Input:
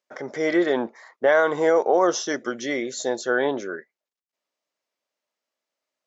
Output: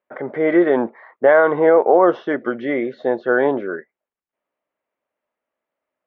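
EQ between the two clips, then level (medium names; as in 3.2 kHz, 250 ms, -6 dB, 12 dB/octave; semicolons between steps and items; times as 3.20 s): Bessel low-pass 1.8 kHz, order 6; distance through air 83 m; +6.5 dB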